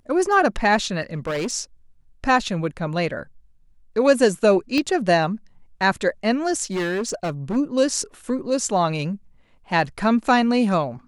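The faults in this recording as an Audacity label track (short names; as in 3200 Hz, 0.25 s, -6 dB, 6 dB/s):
1.140000	1.530000	clipped -21.5 dBFS
4.780000	4.780000	pop -11 dBFS
6.630000	7.570000	clipped -21 dBFS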